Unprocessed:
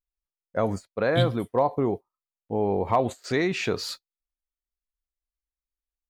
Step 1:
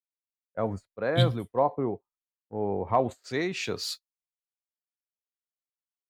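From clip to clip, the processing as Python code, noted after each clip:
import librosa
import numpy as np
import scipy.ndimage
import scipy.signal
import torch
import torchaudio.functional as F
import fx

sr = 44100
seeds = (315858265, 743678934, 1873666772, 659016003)

y = fx.band_widen(x, sr, depth_pct=100)
y = y * 10.0 ** (-4.5 / 20.0)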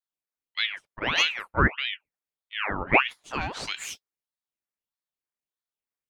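y = fx.band_shelf(x, sr, hz=1100.0, db=8.5, octaves=1.7)
y = fx.ring_lfo(y, sr, carrier_hz=1600.0, swing_pct=75, hz=1.6)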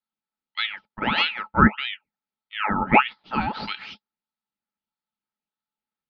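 y = scipy.signal.sosfilt(scipy.signal.butter(12, 4900.0, 'lowpass', fs=sr, output='sos'), x)
y = fx.small_body(y, sr, hz=(210.0, 860.0, 1300.0), ring_ms=60, db=15)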